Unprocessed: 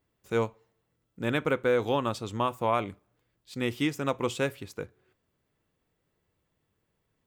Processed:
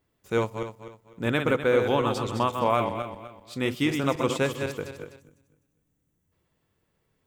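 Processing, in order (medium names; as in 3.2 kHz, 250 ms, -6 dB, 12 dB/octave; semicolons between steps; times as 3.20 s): backward echo that repeats 126 ms, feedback 54%, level -6 dB; time-frequency box 5.20–6.32 s, 340–5600 Hz -10 dB; trim +2.5 dB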